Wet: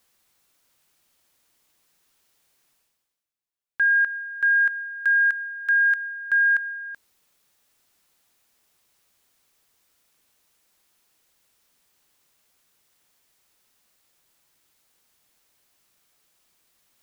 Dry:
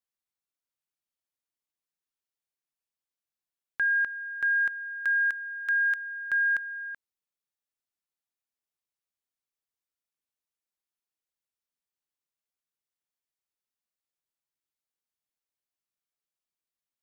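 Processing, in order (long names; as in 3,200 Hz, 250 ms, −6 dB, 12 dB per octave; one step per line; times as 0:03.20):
dynamic equaliser 1,600 Hz, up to +6 dB, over −37 dBFS
reversed playback
upward compression, threshold −47 dBFS
reversed playback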